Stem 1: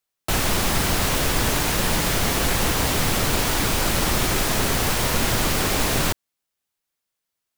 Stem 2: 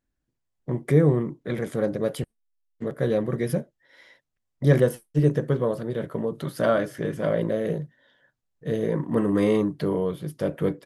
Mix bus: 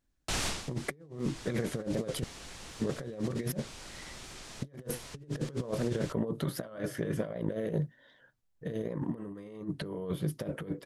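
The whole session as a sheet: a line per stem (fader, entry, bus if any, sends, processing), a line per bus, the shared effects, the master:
-18.0 dB, 0.00 s, no send, Bessel low-pass 6400 Hz, order 4; high shelf 3300 Hz +11 dB; auto duck -15 dB, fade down 0.20 s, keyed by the second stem
-5.5 dB, 0.00 s, no send, low shelf 110 Hz +3.5 dB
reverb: off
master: negative-ratio compressor -34 dBFS, ratio -0.5; record warp 78 rpm, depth 100 cents

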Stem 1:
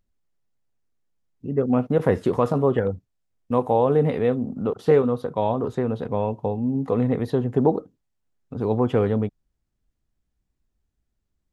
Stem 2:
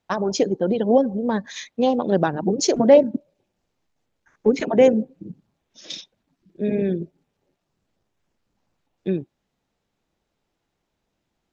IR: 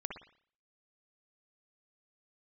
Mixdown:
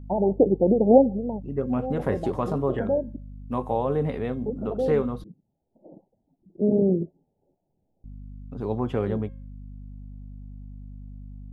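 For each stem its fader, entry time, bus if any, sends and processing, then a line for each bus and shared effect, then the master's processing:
+2.5 dB, 0.00 s, muted 5.24–8.04, no send, notch 490 Hz, Q 12; hum 50 Hz, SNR 10 dB; resonator 540 Hz, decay 0.46 s, mix 60%
+1.5 dB, 0.00 s, no send, steep low-pass 880 Hz 96 dB/oct; auto duck -14 dB, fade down 0.45 s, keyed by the first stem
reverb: off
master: dry

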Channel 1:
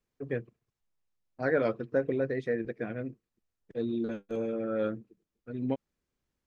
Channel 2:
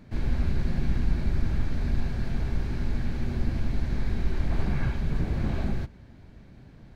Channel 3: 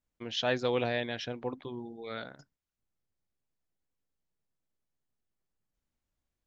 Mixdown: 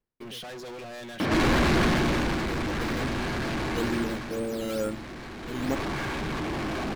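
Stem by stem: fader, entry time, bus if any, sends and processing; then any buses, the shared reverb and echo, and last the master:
+1.0 dB, 0.00 s, no send, median filter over 9 samples; decimation with a swept rate 9×, swing 100% 2.2 Hz; auto duck -17 dB, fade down 0.30 s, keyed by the third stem
1.82 s -3.5 dB -> 2.5 s -11 dB -> 3.93 s -11 dB -> 4.43 s -21.5 dB -> 5.37 s -21.5 dB -> 5.78 s -12.5 dB, 1.20 s, no send, small resonant body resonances 320/1100 Hz, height 9 dB; overdrive pedal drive 46 dB, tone 2900 Hz, clips at -11.5 dBFS
-12.5 dB, 0.00 s, no send, comb 5.4 ms, depth 81%; limiter -24.5 dBFS, peak gain reduction 10 dB; sample leveller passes 5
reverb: off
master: dry

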